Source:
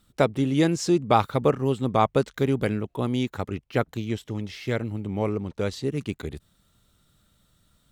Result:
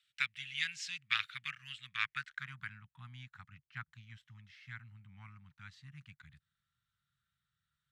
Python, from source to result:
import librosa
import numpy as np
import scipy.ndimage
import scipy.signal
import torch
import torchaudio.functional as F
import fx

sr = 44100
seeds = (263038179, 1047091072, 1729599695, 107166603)

y = fx.cheby_harmonics(x, sr, harmonics=(3,), levels_db=(-16,), full_scale_db=-5.5)
y = scipy.signal.sosfilt(scipy.signal.cheby1(3, 1.0, [140.0, 1600.0], 'bandstop', fs=sr, output='sos'), y)
y = fx.filter_sweep_bandpass(y, sr, from_hz=2600.0, to_hz=690.0, start_s=1.91, end_s=2.88, q=2.0)
y = y * librosa.db_to_amplitude(6.0)